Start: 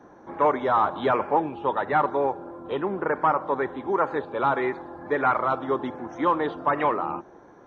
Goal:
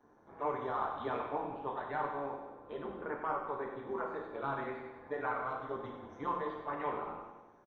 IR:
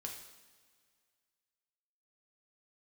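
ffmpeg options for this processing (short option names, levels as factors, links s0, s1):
-filter_complex "[0:a]tremolo=f=140:d=0.824,aecho=1:1:95|190|285|380|475|570|665:0.335|0.198|0.117|0.0688|0.0406|0.0239|0.0141[s0];[1:a]atrim=start_sample=2205,afade=t=out:st=0.31:d=0.01,atrim=end_sample=14112[s1];[s0][s1]afir=irnorm=-1:irlink=0,volume=0.376"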